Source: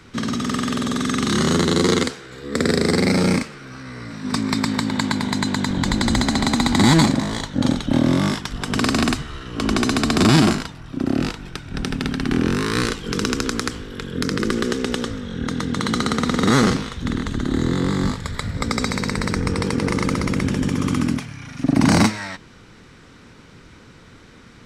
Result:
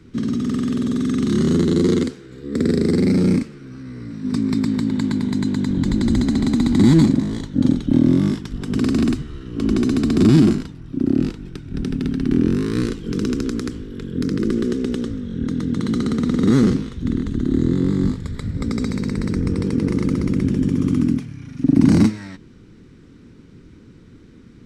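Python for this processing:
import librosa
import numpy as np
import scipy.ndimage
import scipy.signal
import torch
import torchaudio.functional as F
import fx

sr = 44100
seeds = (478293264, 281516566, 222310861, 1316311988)

y = fx.low_shelf_res(x, sr, hz=480.0, db=11.0, q=1.5)
y = y * 10.0 ** (-10.0 / 20.0)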